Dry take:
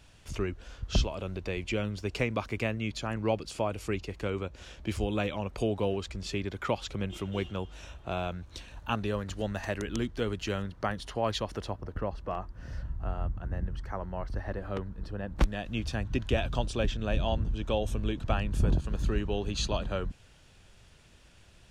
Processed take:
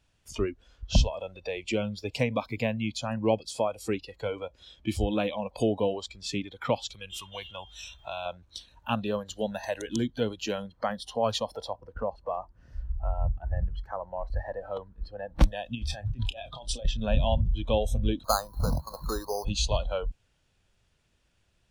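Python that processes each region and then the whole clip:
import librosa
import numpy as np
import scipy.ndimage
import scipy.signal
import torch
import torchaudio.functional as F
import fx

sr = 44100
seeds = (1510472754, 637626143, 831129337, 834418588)

y = fx.chain(x, sr, fx.peak_eq(hz=330.0, db=-10.5, octaves=2.6),
    fx.env_flatten(amount_pct=50), at=(6.9, 8.26))
y = fx.chain(y, sr, fx.notch(hz=6800.0, q=11.0),
    fx.over_compress(threshold_db=-37.0, ratio=-1.0),
    fx.doubler(ms=29.0, db=-12), at=(15.75, 16.85))
y = fx.chain(y, sr, fx.lowpass_res(hz=1200.0, q=3.4),
    fx.low_shelf(hz=260.0, db=-8.0),
    fx.resample_bad(factor=8, down='filtered', up='hold'), at=(18.24, 19.45))
y = fx.noise_reduce_blind(y, sr, reduce_db=18)
y = fx.dynamic_eq(y, sr, hz=1700.0, q=1.0, threshold_db=-49.0, ratio=4.0, max_db=-7)
y = F.gain(torch.from_numpy(y), 5.0).numpy()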